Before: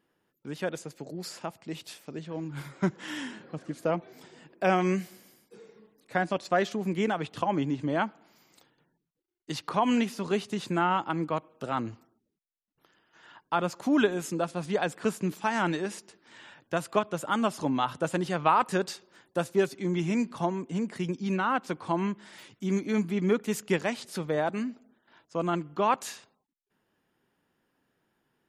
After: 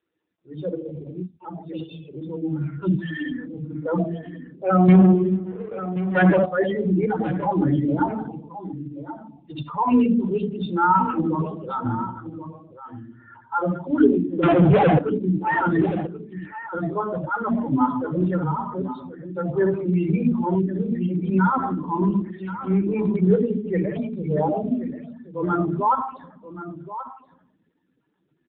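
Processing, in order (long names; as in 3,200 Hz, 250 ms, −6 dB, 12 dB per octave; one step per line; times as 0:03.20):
0:18.44–0:19.38: downward compressor 16 to 1, threshold −29 dBFS, peak gain reduction 12.5 dB
transient designer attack −8 dB, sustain +2 dB
spectral tilt +2.5 dB per octave
convolution reverb RT60 0.90 s, pre-delay 23 ms, DRR 2.5 dB
spectral peaks only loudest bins 8
0:04.88–0:06.46: leveller curve on the samples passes 3
automatic gain control gain up to 9 dB
0:14.43–0:14.99: leveller curve on the samples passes 5
low-shelf EQ 110 Hz +11 dB
tuned comb filter 61 Hz, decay 0.33 s, harmonics all, mix 30%
single-tap delay 1,080 ms −12.5 dB
AMR narrowband 7.4 kbit/s 8,000 Hz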